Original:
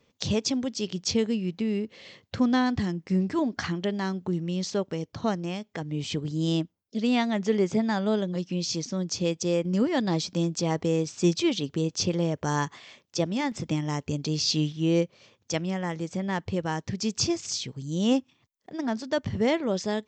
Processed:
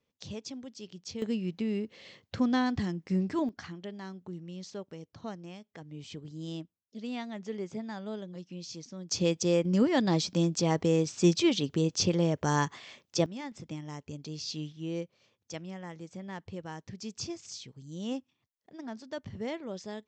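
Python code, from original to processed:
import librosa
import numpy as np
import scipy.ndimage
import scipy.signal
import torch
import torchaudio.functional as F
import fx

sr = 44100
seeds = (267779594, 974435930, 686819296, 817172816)

y = fx.gain(x, sr, db=fx.steps((0.0, -14.5), (1.22, -4.0), (3.49, -13.0), (9.11, -0.5), (13.26, -12.0)))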